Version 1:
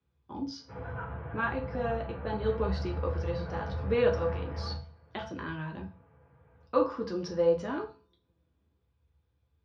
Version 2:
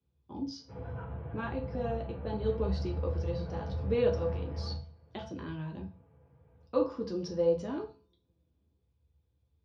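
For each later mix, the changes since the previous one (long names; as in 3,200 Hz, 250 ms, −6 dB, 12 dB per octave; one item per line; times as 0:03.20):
master: add parametric band 1,500 Hz −10.5 dB 1.7 octaves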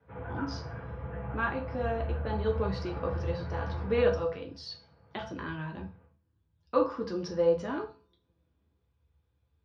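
background: entry −0.60 s
master: add parametric band 1,500 Hz +10.5 dB 1.7 octaves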